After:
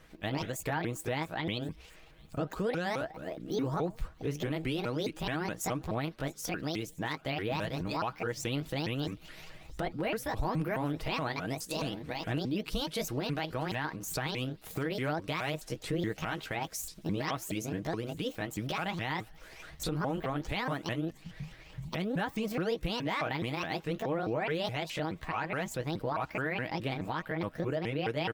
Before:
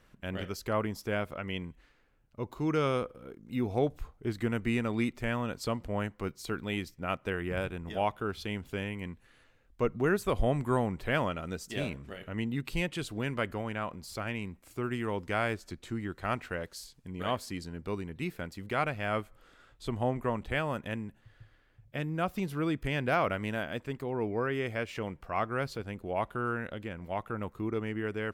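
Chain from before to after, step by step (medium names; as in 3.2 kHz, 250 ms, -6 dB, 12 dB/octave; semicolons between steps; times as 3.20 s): sawtooth pitch modulation +10 st, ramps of 211 ms; recorder AGC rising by 13 dB/s; comb 6.3 ms, depth 39%; in parallel at -2 dB: compression, threshold -42 dBFS, peak gain reduction 18.5 dB; on the sum: peak limiter -23.5 dBFS, peak gain reduction 10.5 dB; feedback echo behind a high-pass 669 ms, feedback 72%, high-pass 4.5 kHz, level -21.5 dB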